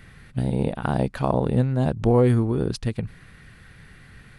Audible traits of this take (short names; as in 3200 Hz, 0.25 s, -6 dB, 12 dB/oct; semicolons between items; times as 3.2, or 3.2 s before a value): noise floor -49 dBFS; spectral tilt -7.5 dB/oct